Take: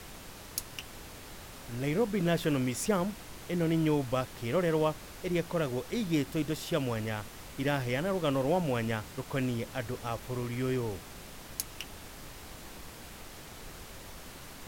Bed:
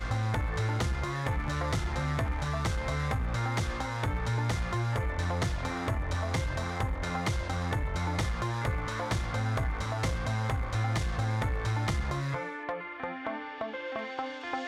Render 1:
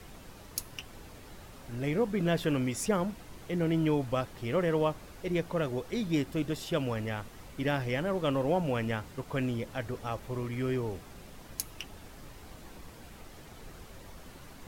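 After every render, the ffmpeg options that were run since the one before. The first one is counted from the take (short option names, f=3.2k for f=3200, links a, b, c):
-af "afftdn=nr=7:nf=-48"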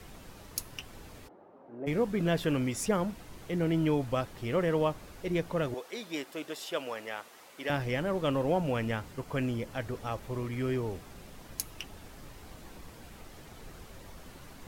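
-filter_complex "[0:a]asplit=3[a][b][c];[a]afade=t=out:st=1.27:d=0.02[d];[b]asuperpass=centerf=510:order=4:qfactor=0.77,afade=t=in:st=1.27:d=0.02,afade=t=out:st=1.86:d=0.02[e];[c]afade=t=in:st=1.86:d=0.02[f];[d][e][f]amix=inputs=3:normalize=0,asettb=1/sr,asplit=3[g][h][i];[g]atrim=end=5.744[j];[h]atrim=start=5.74:end=7.7,asetpts=PTS-STARTPTS,afade=t=in:d=0.004:c=qsin,afade=t=out:st=1.956:d=0.004:c=qsin,highpass=490[k];[i]atrim=start=7.696[l];[j][k]acrossfade=d=0.004:c1=hsin:c2=qsin[m];[m][l]acrossfade=d=0.004:c1=qsin:c2=hsin,asettb=1/sr,asplit=3[n][o][p];[n]atrim=end=9.134[q];[o]atrim=start=9.13:end=9.74,asetpts=PTS-STARTPTS,afade=t=in:d=0.004:c=qsin,afade=t=out:st=0.606:d=0.004:c=qsin,bandreject=f=3.7k:w=12[r];[p]atrim=start=9.736[s];[q][r]acrossfade=d=0.004:c1=hsin:c2=qsin[t];[t][s]acrossfade=d=0.004:c1=qsin:c2=hsin"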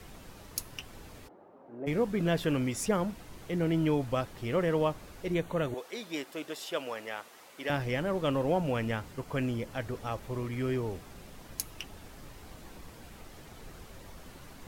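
-filter_complex "[0:a]asettb=1/sr,asplit=3[a][b][c];[a]atrim=end=5.344[d];[b]atrim=start=5.34:end=5.78,asetpts=PTS-STARTPTS,afade=t=in:d=0.004:c=qsin,afade=t=out:st=0.436:d=0.004:c=qsin,asuperstop=centerf=5100:order=4:qfactor=3.8[e];[c]atrim=start=5.776[f];[d][e]acrossfade=d=0.004:c1=hsin:c2=qsin[g];[g][f]acrossfade=d=0.004:c1=qsin:c2=hsin"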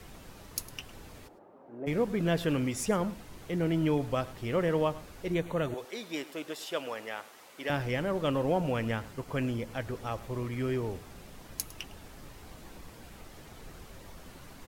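-af "aecho=1:1:106:0.126"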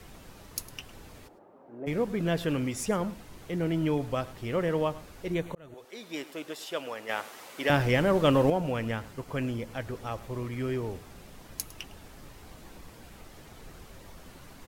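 -filter_complex "[0:a]asplit=4[a][b][c][d];[a]atrim=end=5.55,asetpts=PTS-STARTPTS,afade=t=out:st=5.546:d=0.004:c=hsin[e];[b]atrim=start=5.55:end=7.092,asetpts=PTS-STARTPTS,afade=t=in:d=0.66[f];[c]atrim=start=7.088:end=8.502,asetpts=PTS-STARTPTS,volume=7dB[g];[d]atrim=start=8.498[h];[e][f]concat=n=2:v=0:a=1[i];[i][g]acrossfade=d=0.004:c1=hsin:c2=hsin[j];[j][h]acrossfade=d=0.004:c1=hsin:c2=hsin"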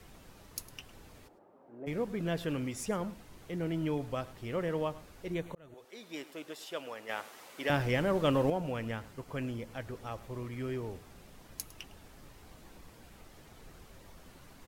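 -af "volume=-5.5dB"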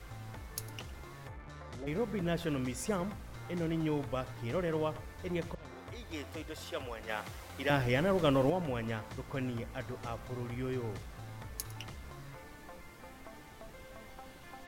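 -filter_complex "[1:a]volume=-17dB[a];[0:a][a]amix=inputs=2:normalize=0"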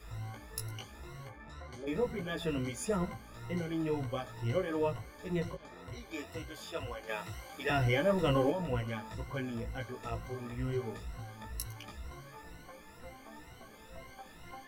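-af "afftfilt=real='re*pow(10,16/40*sin(2*PI*(2*log(max(b,1)*sr/1024/100)/log(2)-(2.1)*(pts-256)/sr)))':imag='im*pow(10,16/40*sin(2*PI*(2*log(max(b,1)*sr/1024/100)/log(2)-(2.1)*(pts-256)/sr)))':win_size=1024:overlap=0.75,flanger=delay=16:depth=2.2:speed=1.7"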